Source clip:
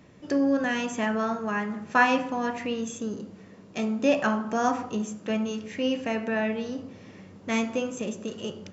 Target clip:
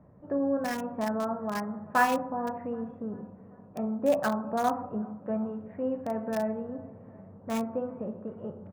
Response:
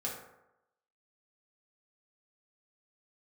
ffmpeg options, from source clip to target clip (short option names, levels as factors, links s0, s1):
-filter_complex "[0:a]firequalizer=gain_entry='entry(120,0);entry(330,-8);entry(600,0);entry(2500,-10)':delay=0.05:min_phase=1,acrossover=split=1500[s0][s1];[s0]aecho=1:1:389|778|1167|1556:0.0794|0.0421|0.0223|0.0118[s2];[s1]acrusher=bits=5:mix=0:aa=0.000001[s3];[s2][s3]amix=inputs=2:normalize=0"